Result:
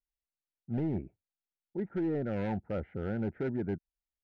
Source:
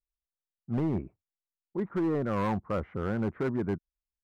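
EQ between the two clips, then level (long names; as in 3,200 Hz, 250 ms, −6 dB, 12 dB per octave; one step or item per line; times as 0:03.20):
Butterworth band-reject 1,100 Hz, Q 2.2
high-frequency loss of the air 160 metres
−3.0 dB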